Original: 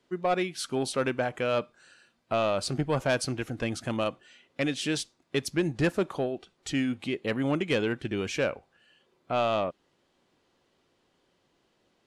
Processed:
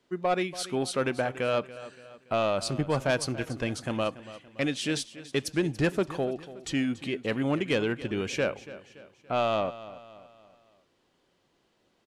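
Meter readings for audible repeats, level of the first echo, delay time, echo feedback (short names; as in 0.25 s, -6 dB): 3, -16.0 dB, 0.285 s, 45%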